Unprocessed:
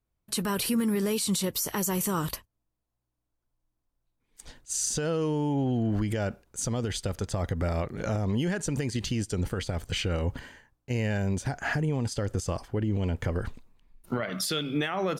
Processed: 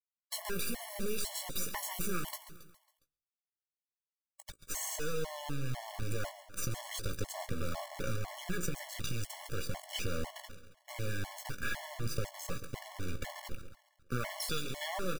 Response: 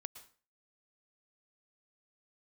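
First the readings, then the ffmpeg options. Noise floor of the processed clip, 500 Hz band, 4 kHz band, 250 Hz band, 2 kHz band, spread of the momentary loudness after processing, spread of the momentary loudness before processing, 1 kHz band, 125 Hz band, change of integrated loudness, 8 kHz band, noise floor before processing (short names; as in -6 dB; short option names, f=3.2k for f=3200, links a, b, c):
under -85 dBFS, -10.5 dB, -6.5 dB, -15.0 dB, -5.5 dB, 10 LU, 6 LU, -7.0 dB, -11.5 dB, -10.0 dB, -8.0 dB, -82 dBFS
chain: -filter_complex "[0:a]equalizer=f=290:w=2.5:g=-14,acompressor=threshold=-31dB:ratio=3,acrusher=bits=4:dc=4:mix=0:aa=0.000001,asplit=2[a][b];[b]adelay=17,volume=-9.5dB[c];[a][c]amix=inputs=2:normalize=0,aecho=1:1:137|274|411|548|685:0.224|0.112|0.056|0.028|0.014,asplit=2[d][e];[1:a]atrim=start_sample=2205[f];[e][f]afir=irnorm=-1:irlink=0,volume=-5dB[g];[d][g]amix=inputs=2:normalize=0,afftfilt=real='re*gt(sin(2*PI*2*pts/sr)*(1-2*mod(floor(b*sr/1024/570),2)),0)':imag='im*gt(sin(2*PI*2*pts/sr)*(1-2*mod(floor(b*sr/1024/570),2)),0)':win_size=1024:overlap=0.75"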